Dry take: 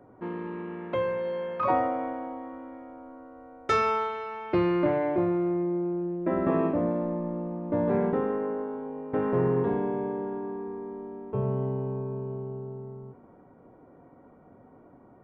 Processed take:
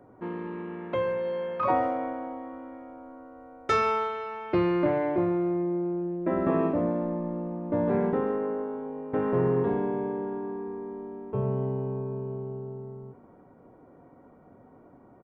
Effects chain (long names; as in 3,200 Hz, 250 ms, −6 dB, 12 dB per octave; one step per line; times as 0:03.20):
far-end echo of a speakerphone 130 ms, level −20 dB